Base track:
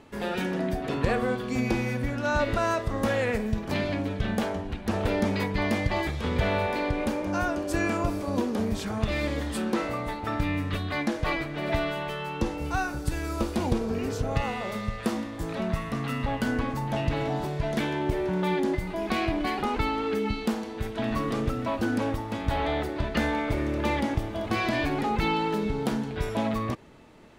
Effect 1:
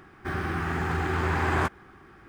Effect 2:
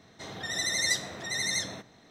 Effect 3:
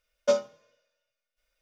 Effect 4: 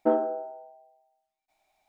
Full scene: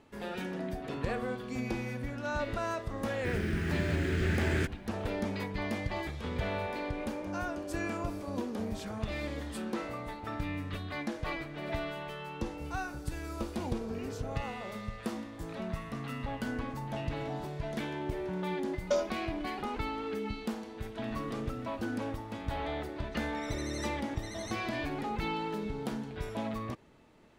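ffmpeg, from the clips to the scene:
ffmpeg -i bed.wav -i cue0.wav -i cue1.wav -i cue2.wav -i cue3.wav -filter_complex "[0:a]volume=-8.5dB[link_01];[1:a]asuperstop=centerf=900:order=4:qfactor=0.66[link_02];[4:a]acompressor=threshold=-36dB:ratio=6:attack=3.2:release=140:knee=1:detection=peak[link_03];[3:a]acompressor=threshold=-23dB:ratio=6:attack=3.2:release=140:knee=1:detection=peak[link_04];[link_02]atrim=end=2.28,asetpts=PTS-STARTPTS,volume=-2dB,afade=type=in:duration=0.004:curve=hsin,afade=type=out:start_time=2.276:duration=0.004:curve=hsin,adelay=2990[link_05];[link_03]atrim=end=1.88,asetpts=PTS-STARTPTS,volume=-11dB,afade=type=in:duration=0.004:curve=hsin,afade=type=out:start_time=1.876:duration=0.004:curve=hsin,adelay=8560[link_06];[link_04]atrim=end=1.61,asetpts=PTS-STARTPTS,volume=-0.5dB,afade=type=in:duration=0.004:curve=hsin,afade=type=out:start_time=1.606:duration=0.004:curve=hsin,adelay=18630[link_07];[2:a]atrim=end=2.1,asetpts=PTS-STARTPTS,volume=-17dB,afade=type=in:duration=0.004:curve=hsin,afade=type=out:start_time=2.096:duration=0.004:curve=hsin,adelay=1010772S[link_08];[link_01][link_05][link_06][link_07][link_08]amix=inputs=5:normalize=0" out.wav

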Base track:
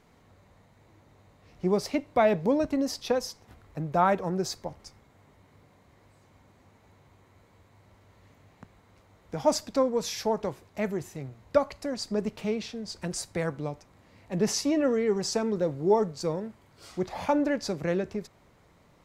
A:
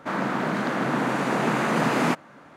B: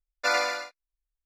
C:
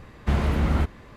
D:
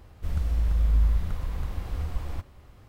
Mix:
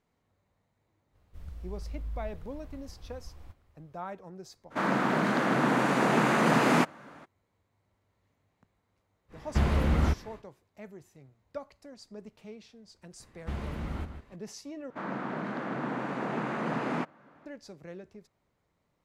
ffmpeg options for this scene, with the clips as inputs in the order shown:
ffmpeg -i bed.wav -i cue0.wav -i cue1.wav -i cue2.wav -i cue3.wav -filter_complex "[1:a]asplit=2[link_01][link_02];[3:a]asplit=2[link_03][link_04];[0:a]volume=-16.5dB[link_05];[link_04]asplit=2[link_06][link_07];[link_07]adelay=151.6,volume=-9dB,highshelf=frequency=4000:gain=-3.41[link_08];[link_06][link_08]amix=inputs=2:normalize=0[link_09];[link_02]aemphasis=mode=reproduction:type=75fm[link_10];[link_05]asplit=2[link_11][link_12];[link_11]atrim=end=14.904[link_13];[link_10]atrim=end=2.56,asetpts=PTS-STARTPTS,volume=-9.5dB[link_14];[link_12]atrim=start=17.456[link_15];[4:a]atrim=end=2.88,asetpts=PTS-STARTPTS,volume=-16dB,afade=type=in:duration=0.05,afade=type=out:start_time=2.83:duration=0.05,adelay=1110[link_16];[link_01]atrim=end=2.56,asetpts=PTS-STARTPTS,volume=-1dB,afade=type=in:duration=0.02,afade=type=out:start_time=2.54:duration=0.02,adelay=4700[link_17];[link_03]atrim=end=1.16,asetpts=PTS-STARTPTS,volume=-3dB,afade=type=in:duration=0.1,afade=type=out:start_time=1.06:duration=0.1,adelay=9280[link_18];[link_09]atrim=end=1.16,asetpts=PTS-STARTPTS,volume=-13dB,afade=type=in:duration=0.004:curve=hsin,afade=type=out:start_time=1.156:duration=0.004:curve=hsin,adelay=13200[link_19];[link_13][link_14]acrossfade=duration=0.004:curve1=hsin:curve2=hsin[link_20];[link_20][link_15]acrossfade=duration=0.004:curve1=hsin:curve2=hsin[link_21];[link_21][link_16][link_17][link_18][link_19]amix=inputs=5:normalize=0" out.wav

